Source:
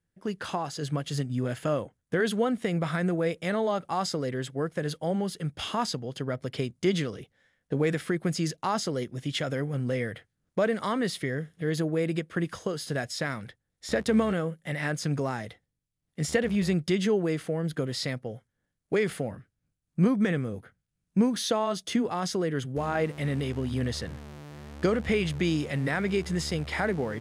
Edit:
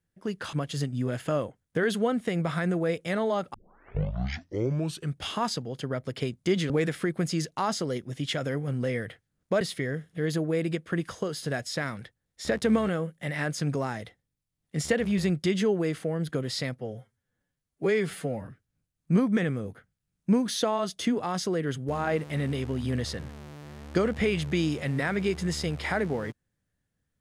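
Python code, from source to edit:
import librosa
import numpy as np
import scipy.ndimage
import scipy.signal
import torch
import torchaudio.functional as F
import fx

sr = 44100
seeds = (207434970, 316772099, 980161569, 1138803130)

y = fx.edit(x, sr, fx.cut(start_s=0.53, length_s=0.37),
    fx.tape_start(start_s=3.91, length_s=1.62),
    fx.cut(start_s=7.07, length_s=0.69),
    fx.cut(start_s=10.67, length_s=0.38),
    fx.stretch_span(start_s=18.23, length_s=1.12, factor=1.5), tone=tone)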